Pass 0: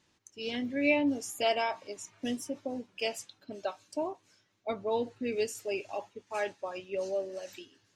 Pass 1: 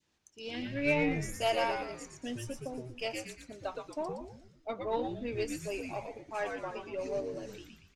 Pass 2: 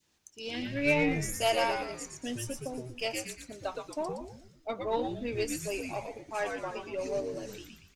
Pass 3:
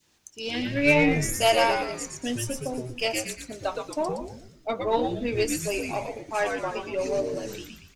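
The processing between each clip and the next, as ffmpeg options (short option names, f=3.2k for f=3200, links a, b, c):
-filter_complex "[0:a]asplit=7[a][b][c][d][e][f][g];[b]adelay=117,afreqshift=-130,volume=-4dB[h];[c]adelay=234,afreqshift=-260,volume=-10.4dB[i];[d]adelay=351,afreqshift=-390,volume=-16.8dB[j];[e]adelay=468,afreqshift=-520,volume=-23.1dB[k];[f]adelay=585,afreqshift=-650,volume=-29.5dB[l];[g]adelay=702,afreqshift=-780,volume=-35.9dB[m];[a][h][i][j][k][l][m]amix=inputs=7:normalize=0,adynamicequalizer=threshold=0.00794:dfrequency=1100:dqfactor=0.78:tfrequency=1100:tqfactor=0.78:attack=5:release=100:ratio=0.375:range=2.5:mode=boostabove:tftype=bell,aeval=exprs='0.282*(cos(1*acos(clip(val(0)/0.282,-1,1)))-cos(1*PI/2))+0.00631*(cos(7*acos(clip(val(0)/0.282,-1,1)))-cos(7*PI/2))+0.00501*(cos(8*acos(clip(val(0)/0.282,-1,1)))-cos(8*PI/2))':c=same,volume=-4.5dB"
-af "highshelf=f=5.9k:g=9,volume=2dB"
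-af "bandreject=f=66.57:t=h:w=4,bandreject=f=133.14:t=h:w=4,bandreject=f=199.71:t=h:w=4,bandreject=f=266.28:t=h:w=4,bandreject=f=332.85:t=h:w=4,bandreject=f=399.42:t=h:w=4,bandreject=f=465.99:t=h:w=4,bandreject=f=532.56:t=h:w=4,bandreject=f=599.13:t=h:w=4,bandreject=f=665.7:t=h:w=4,volume=7dB"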